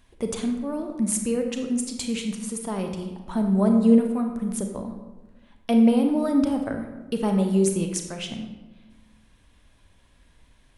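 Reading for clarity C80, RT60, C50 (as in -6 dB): 8.0 dB, 1.2 s, 5.5 dB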